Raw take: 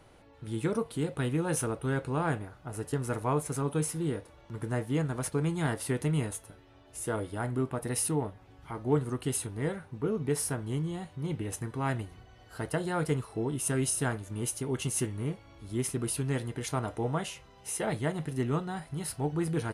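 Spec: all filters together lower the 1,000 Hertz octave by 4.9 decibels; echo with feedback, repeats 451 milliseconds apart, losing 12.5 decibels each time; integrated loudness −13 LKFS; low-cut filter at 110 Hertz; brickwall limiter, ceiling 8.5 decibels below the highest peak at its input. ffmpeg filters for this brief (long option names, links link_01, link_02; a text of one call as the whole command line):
ffmpeg -i in.wav -af "highpass=110,equalizer=frequency=1000:width_type=o:gain=-6.5,alimiter=level_in=0.5dB:limit=-24dB:level=0:latency=1,volume=-0.5dB,aecho=1:1:451|902|1353:0.237|0.0569|0.0137,volume=22.5dB" out.wav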